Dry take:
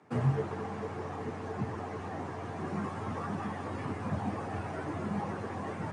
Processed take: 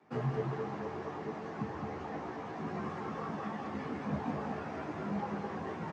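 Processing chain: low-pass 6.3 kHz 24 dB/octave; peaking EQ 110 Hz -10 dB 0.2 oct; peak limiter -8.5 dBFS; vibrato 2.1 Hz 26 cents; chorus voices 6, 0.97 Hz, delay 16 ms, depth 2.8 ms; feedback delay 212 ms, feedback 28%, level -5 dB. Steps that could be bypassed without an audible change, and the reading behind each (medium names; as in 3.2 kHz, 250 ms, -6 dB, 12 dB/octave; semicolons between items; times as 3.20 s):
peak limiter -8.5 dBFS: peak at its input -19.0 dBFS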